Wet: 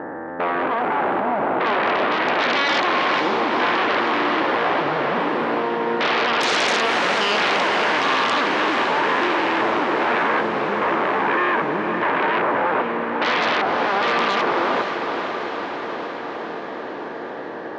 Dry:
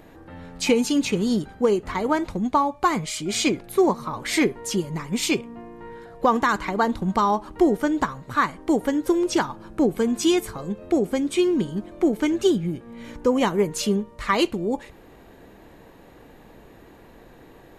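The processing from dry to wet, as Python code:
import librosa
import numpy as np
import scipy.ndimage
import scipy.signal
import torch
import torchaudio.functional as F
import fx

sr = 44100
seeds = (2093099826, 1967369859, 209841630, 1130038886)

p1 = fx.spec_steps(x, sr, hold_ms=400)
p2 = scipy.signal.sosfilt(scipy.signal.ellip(4, 1.0, 40, 1800.0, 'lowpass', fs=sr, output='sos'), p1)
p3 = fx.rider(p2, sr, range_db=10, speed_s=2.0)
p4 = p2 + (p3 * 10.0 ** (0.0 / 20.0))
p5 = fx.fold_sine(p4, sr, drive_db=17, ceiling_db=-9.0)
p6 = scipy.signal.sosfilt(scipy.signal.butter(2, 350.0, 'highpass', fs=sr, output='sos'), p5)
p7 = fx.echo_diffused(p6, sr, ms=500, feedback_pct=70, wet_db=-7)
y = p7 * 10.0 ** (-7.5 / 20.0)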